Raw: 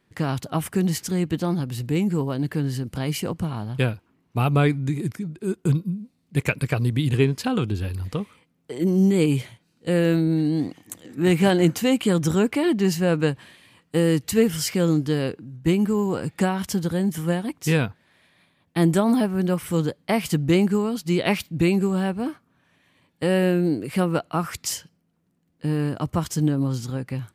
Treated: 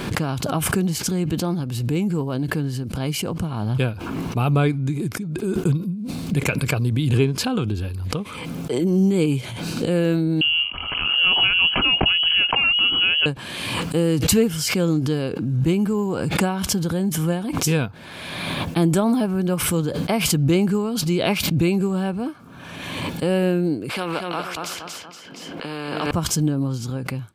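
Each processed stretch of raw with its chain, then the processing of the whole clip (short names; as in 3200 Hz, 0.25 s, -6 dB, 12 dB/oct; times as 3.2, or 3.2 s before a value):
10.41–13.26 inverted band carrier 3100 Hz + three-band squash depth 70%
23.89–26.11 three-band isolator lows -22 dB, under 230 Hz, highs -21 dB, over 3300 Hz + feedback echo 0.234 s, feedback 25%, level -7 dB + spectral compressor 2:1
whole clip: high shelf 9400 Hz -3.5 dB; notch 1900 Hz, Q 5.6; backwards sustainer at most 31 dB/s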